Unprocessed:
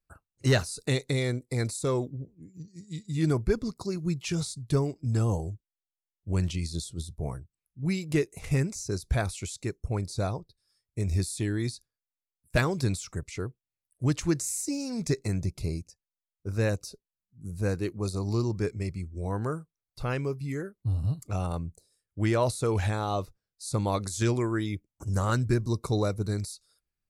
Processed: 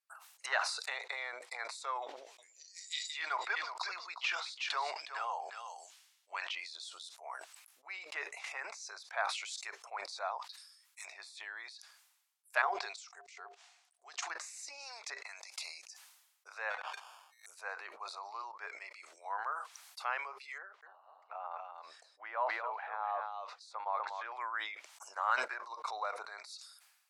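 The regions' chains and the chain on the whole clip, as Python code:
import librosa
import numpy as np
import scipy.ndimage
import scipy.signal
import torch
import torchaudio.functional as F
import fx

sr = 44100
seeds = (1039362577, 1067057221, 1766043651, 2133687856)

y = fx.chain(x, sr, fx.peak_eq(hz=3700.0, db=11.0, octaves=2.8),
    fx.echo_single(ms=363, db=-9.5), at=(2.02, 6.55))
y = fx.chain(y, sr, fx.highpass(hz=950.0, slope=24),
    fx.transient(attack_db=-3, sustain_db=6), at=(10.38, 11.05))
y = fx.chain(y, sr, fx.lowpass(hz=7400.0, slope=24),
    fx.level_steps(step_db=19),
    fx.small_body(hz=(400.0, 710.0), ring_ms=85, db=17), at=(12.62, 14.3))
y = fx.chain(y, sr, fx.peak_eq(hz=350.0, db=-12.0, octaves=1.3),
    fx.over_compress(threshold_db=-36.0, ratio=-1.0), at=(15.17, 15.78))
y = fx.chain(y, sr, fx.high_shelf(hz=6600.0, db=6.0),
    fx.sample_hold(seeds[0], rate_hz=2000.0, jitter_pct=0), at=(16.7, 17.46))
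y = fx.chain(y, sr, fx.spacing_loss(db_at_10k=35),
    fx.echo_single(ms=245, db=-7.5), at=(20.58, 24.32))
y = fx.env_lowpass_down(y, sr, base_hz=1700.0, full_db=-25.5)
y = scipy.signal.sosfilt(scipy.signal.butter(6, 770.0, 'highpass', fs=sr, output='sos'), y)
y = fx.sustainer(y, sr, db_per_s=57.0)
y = y * librosa.db_to_amplitude(1.5)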